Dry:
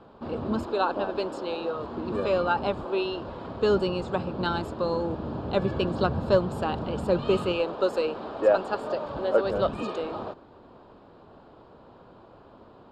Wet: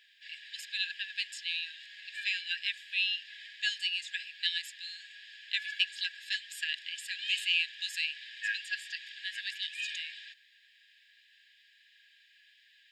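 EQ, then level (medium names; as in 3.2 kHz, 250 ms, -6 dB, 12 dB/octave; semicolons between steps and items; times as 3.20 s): brick-wall FIR high-pass 1.6 kHz; band-stop 4.3 kHz, Q 10; +8.5 dB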